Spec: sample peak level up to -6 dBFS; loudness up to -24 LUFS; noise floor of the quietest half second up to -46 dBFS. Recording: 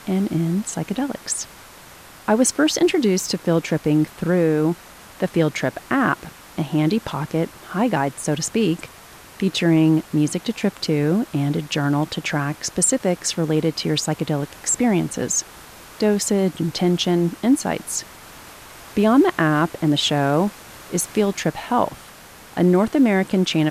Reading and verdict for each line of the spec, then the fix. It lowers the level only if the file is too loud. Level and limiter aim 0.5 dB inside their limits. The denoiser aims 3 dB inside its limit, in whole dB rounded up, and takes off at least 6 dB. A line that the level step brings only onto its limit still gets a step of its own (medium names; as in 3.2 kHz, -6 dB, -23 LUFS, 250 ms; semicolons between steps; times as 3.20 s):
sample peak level -5.5 dBFS: fail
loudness -20.5 LUFS: fail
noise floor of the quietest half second -43 dBFS: fail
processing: trim -4 dB